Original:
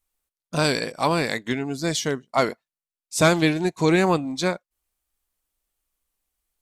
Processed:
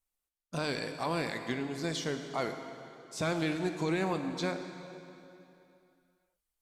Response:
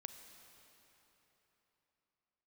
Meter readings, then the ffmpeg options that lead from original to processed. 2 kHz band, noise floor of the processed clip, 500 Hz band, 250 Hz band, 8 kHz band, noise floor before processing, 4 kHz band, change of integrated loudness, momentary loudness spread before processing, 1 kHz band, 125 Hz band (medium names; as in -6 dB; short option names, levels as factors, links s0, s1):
-11.5 dB, under -85 dBFS, -11.5 dB, -10.5 dB, -14.0 dB, under -85 dBFS, -11.5 dB, -11.5 dB, 8 LU, -11.5 dB, -11.0 dB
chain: -filter_complex "[0:a]acrossover=split=5400[s0][s1];[s1]acompressor=threshold=0.0126:ratio=4:attack=1:release=60[s2];[s0][s2]amix=inputs=2:normalize=0,alimiter=limit=0.2:level=0:latency=1:release=68[s3];[1:a]atrim=start_sample=2205,asetrate=57330,aresample=44100[s4];[s3][s4]afir=irnorm=-1:irlink=0,volume=0.891"